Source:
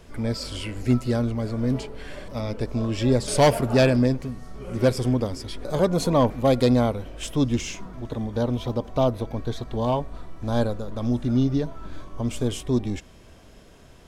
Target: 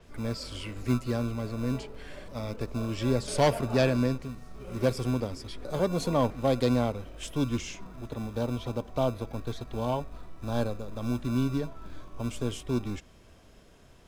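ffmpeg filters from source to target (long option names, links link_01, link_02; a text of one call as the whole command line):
ffmpeg -i in.wav -filter_complex "[0:a]acrossover=split=200[link_01][link_02];[link_01]acrusher=samples=35:mix=1:aa=0.000001[link_03];[link_03][link_02]amix=inputs=2:normalize=0,adynamicequalizer=threshold=0.00501:dfrequency=7400:dqfactor=0.7:tfrequency=7400:tqfactor=0.7:attack=5:release=100:ratio=0.375:range=2.5:mode=cutabove:tftype=highshelf,volume=-6dB" out.wav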